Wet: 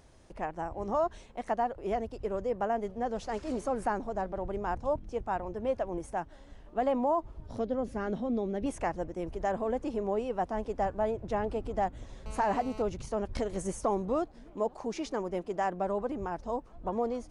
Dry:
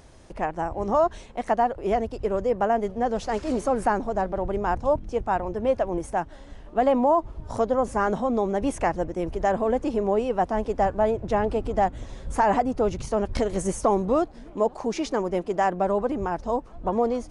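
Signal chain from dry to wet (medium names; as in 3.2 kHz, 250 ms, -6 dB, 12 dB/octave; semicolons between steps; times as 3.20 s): 7.46–8.66 s: graphic EQ 250/1000/4000/8000 Hz +4/-10/+4/-12 dB; 12.26–12.82 s: mobile phone buzz -39 dBFS; trim -8 dB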